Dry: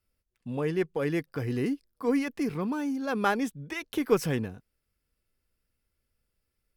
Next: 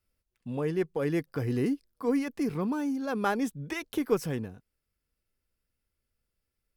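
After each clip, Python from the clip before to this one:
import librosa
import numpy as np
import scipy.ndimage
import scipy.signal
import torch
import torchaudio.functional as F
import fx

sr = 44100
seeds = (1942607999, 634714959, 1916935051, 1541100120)

y = fx.dynamic_eq(x, sr, hz=2500.0, q=0.73, threshold_db=-46.0, ratio=4.0, max_db=-4)
y = fx.rider(y, sr, range_db=4, speed_s=0.5)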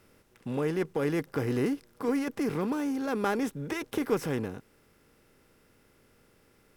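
y = fx.bin_compress(x, sr, power=0.6)
y = y * 10.0 ** (-3.0 / 20.0)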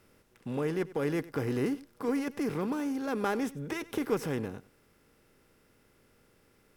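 y = x + 10.0 ** (-19.0 / 20.0) * np.pad(x, (int(96 * sr / 1000.0), 0))[:len(x)]
y = y * 10.0 ** (-2.0 / 20.0)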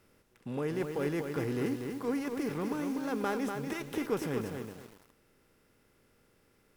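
y = fx.echo_crushed(x, sr, ms=242, feedback_pct=35, bits=8, wet_db=-5.0)
y = y * 10.0 ** (-2.5 / 20.0)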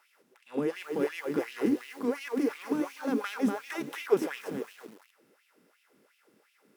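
y = fx.filter_lfo_highpass(x, sr, shape='sine', hz=2.8, low_hz=200.0, high_hz=2800.0, q=3.2)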